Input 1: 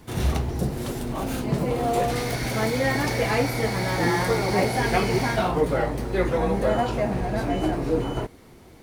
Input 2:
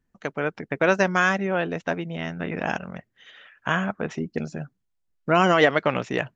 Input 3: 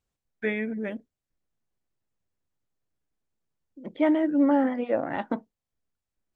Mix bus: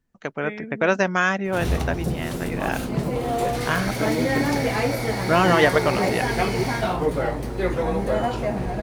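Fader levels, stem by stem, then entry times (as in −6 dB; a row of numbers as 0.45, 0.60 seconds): −0.5, 0.0, −5.5 decibels; 1.45, 0.00, 0.00 seconds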